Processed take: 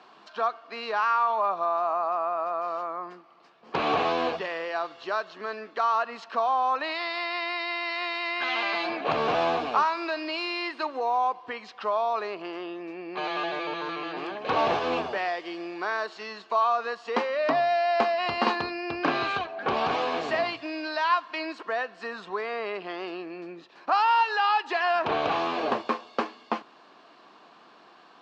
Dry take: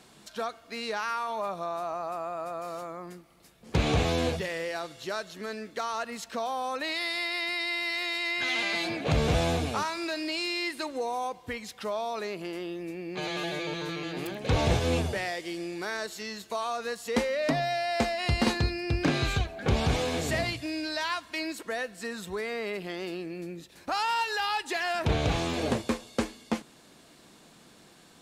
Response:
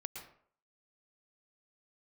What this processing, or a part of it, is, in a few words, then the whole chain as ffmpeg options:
phone earpiece: -af "highpass=410,equalizer=frequency=520:width_type=q:width=4:gain=-4,equalizer=frequency=740:width_type=q:width=4:gain=3,equalizer=frequency=1100:width_type=q:width=4:gain=8,equalizer=frequency=2100:width_type=q:width=4:gain=-6,equalizer=frequency=3600:width_type=q:width=4:gain=-7,lowpass=frequency=4000:width=0.5412,lowpass=frequency=4000:width=1.3066,volume=4.5dB"

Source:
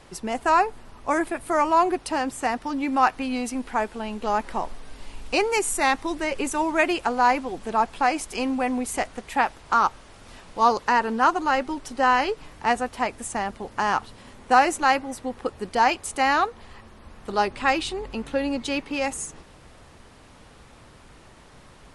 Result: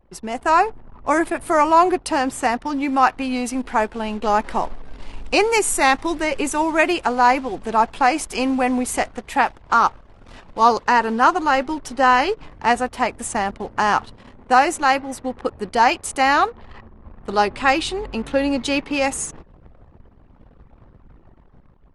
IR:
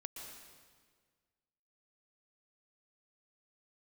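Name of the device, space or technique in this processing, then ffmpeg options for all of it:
voice memo with heavy noise removal: -af "anlmdn=0.0398,dynaudnorm=framelen=110:gausssize=9:maxgain=6dB"

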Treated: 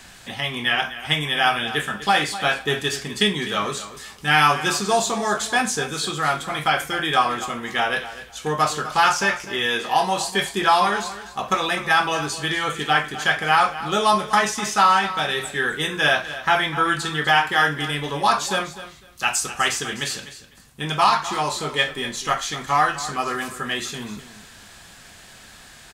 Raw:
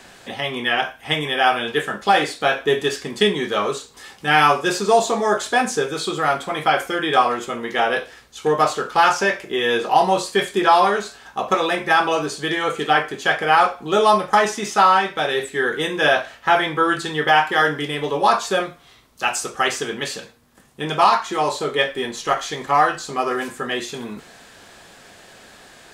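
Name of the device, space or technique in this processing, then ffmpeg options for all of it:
smiley-face EQ: -filter_complex "[0:a]lowshelf=frequency=120:gain=8,equalizer=frequency=450:width_type=o:width=1.5:gain=-8.5,highshelf=frequency=5300:gain=4.5,asettb=1/sr,asplit=3[link_01][link_02][link_03];[link_01]atrim=end=9.664[link_04];[link_02]atrim=start=9.66:end=10.23,asetpts=PTS-STARTPTS,afade=type=in:duration=0.004:curve=qsin,afade=type=out:start_time=0.566:duration=0.004:curve=qsin,lowshelf=frequency=180:gain=-8.5[link_05];[link_03]atrim=start=10.226[link_06];[link_04][link_05]acrossfade=duration=0.004:curve1=hsin:curve2=qsin[link_07];[link_07][link_06]acrossfade=duration=0.004:curve1=qsin:curve2=hsin,aecho=1:1:251|502:0.2|0.0419"

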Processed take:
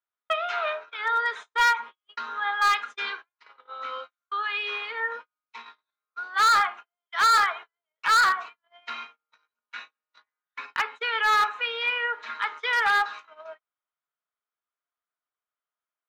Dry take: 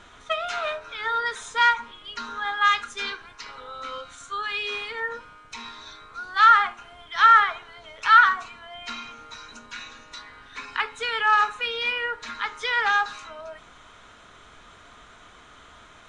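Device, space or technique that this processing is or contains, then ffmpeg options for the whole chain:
walkie-talkie: -af "highpass=530,lowpass=3000,asoftclip=type=hard:threshold=-18.5dB,agate=range=-46dB:threshold=-39dB:ratio=16:detection=peak,volume=1.5dB"

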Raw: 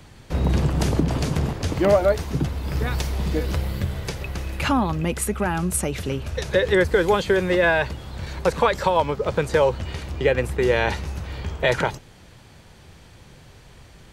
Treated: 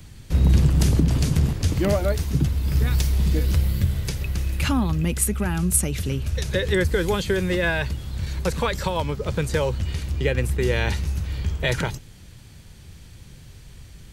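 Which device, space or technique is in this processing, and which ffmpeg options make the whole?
smiley-face EQ: -af "lowshelf=frequency=170:gain=6.5,equalizer=frequency=750:width_type=o:width=2.2:gain=-8.5,highshelf=frequency=7900:gain=8"

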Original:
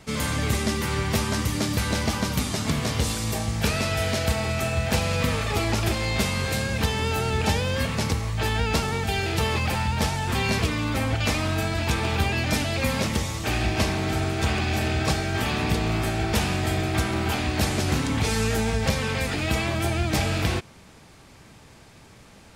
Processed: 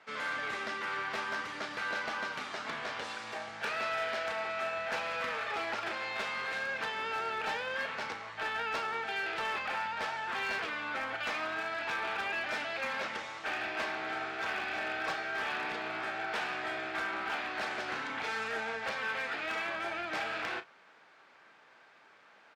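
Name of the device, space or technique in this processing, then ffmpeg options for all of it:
megaphone: -filter_complex "[0:a]highpass=580,lowpass=3000,equalizer=frequency=1500:width_type=o:width=0.55:gain=7,asoftclip=type=hard:threshold=-22dB,asplit=2[link_01][link_02];[link_02]adelay=35,volume=-11dB[link_03];[link_01][link_03]amix=inputs=2:normalize=0,volume=-7dB"

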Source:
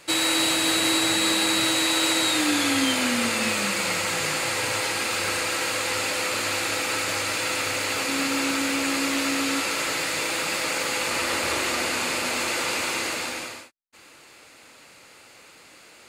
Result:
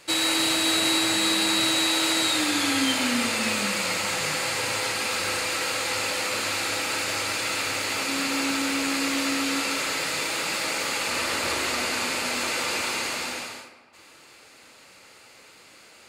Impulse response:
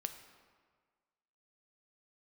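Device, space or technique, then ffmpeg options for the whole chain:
stairwell: -filter_complex "[0:a]equalizer=frequency=4700:width_type=o:width=0.77:gain=2[link_01];[1:a]atrim=start_sample=2205[link_02];[link_01][link_02]afir=irnorm=-1:irlink=0"

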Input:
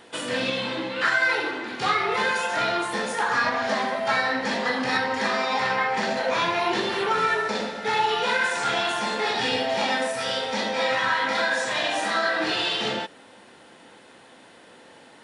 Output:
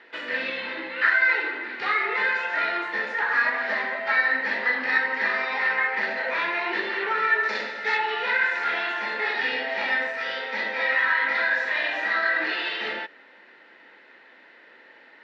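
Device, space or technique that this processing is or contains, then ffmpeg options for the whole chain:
phone earpiece: -filter_complex "[0:a]highpass=440,equalizer=frequency=510:width_type=q:width=4:gain=-4,equalizer=frequency=740:width_type=q:width=4:gain=-8,equalizer=frequency=1100:width_type=q:width=4:gain=-6,equalizer=frequency=1900:width_type=q:width=4:gain=8,equalizer=frequency=3300:width_type=q:width=4:gain=-8,lowpass=frequency=3700:width=0.5412,lowpass=frequency=3700:width=1.3066,asettb=1/sr,asplit=3[link_01][link_02][link_03];[link_01]atrim=end=7.434[link_04];[link_02]atrim=start=7.43:end=7.97,asetpts=PTS-STARTPTS,afade=type=in:duration=0.004:curve=qsin,afade=type=out:start_time=0.536:duration=0.004:curve=qsin,equalizer=frequency=6800:width_type=o:width=1.5:gain=11.5[link_05];[link_03]atrim=start=7.966[link_06];[link_04][link_05]acrossfade=duration=0.004:curve1=hsin:curve2=qsin[link_07];[link_07][link_06]acrossfade=duration=0.004:curve1=qsin:curve2=hsin"

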